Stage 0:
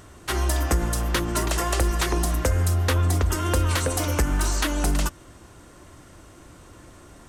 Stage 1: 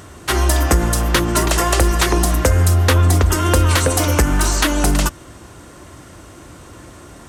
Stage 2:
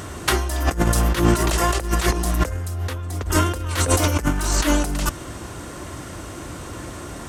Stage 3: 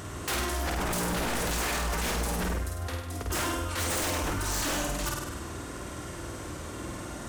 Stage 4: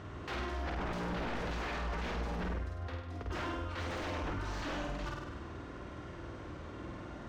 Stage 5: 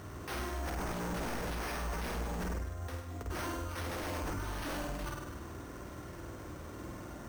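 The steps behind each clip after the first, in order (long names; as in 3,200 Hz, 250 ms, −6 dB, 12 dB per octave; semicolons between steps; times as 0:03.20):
high-pass filter 47 Hz; level +8.5 dB
compressor whose output falls as the input rises −19 dBFS, ratio −0.5
flutter between parallel walls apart 8.6 metres, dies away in 0.89 s; wave folding −17.5 dBFS; level −7 dB
high-frequency loss of the air 230 metres; level −6 dB
bad sample-rate conversion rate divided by 6×, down none, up hold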